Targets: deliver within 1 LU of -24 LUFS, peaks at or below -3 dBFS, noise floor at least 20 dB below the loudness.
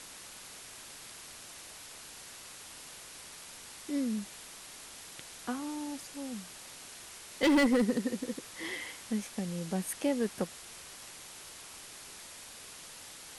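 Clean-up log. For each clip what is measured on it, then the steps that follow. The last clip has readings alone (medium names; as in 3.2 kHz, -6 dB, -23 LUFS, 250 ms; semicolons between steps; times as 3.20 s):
clipped samples 0.6%; clipping level -21.5 dBFS; noise floor -49 dBFS; noise floor target -57 dBFS; loudness -36.5 LUFS; peak level -21.5 dBFS; loudness target -24.0 LUFS
-> clip repair -21.5 dBFS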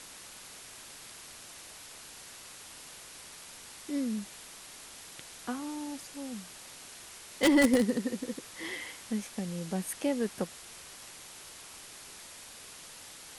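clipped samples 0.0%; noise floor -49 dBFS; noise floor target -53 dBFS
-> noise print and reduce 6 dB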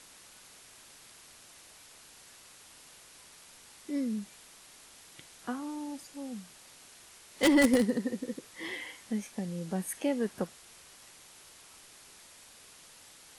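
noise floor -55 dBFS; loudness -32.0 LUFS; peak level -12.5 dBFS; loudness target -24.0 LUFS
-> trim +8 dB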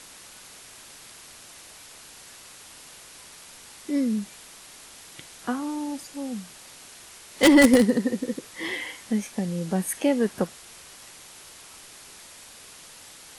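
loudness -24.0 LUFS; peak level -4.5 dBFS; noise floor -47 dBFS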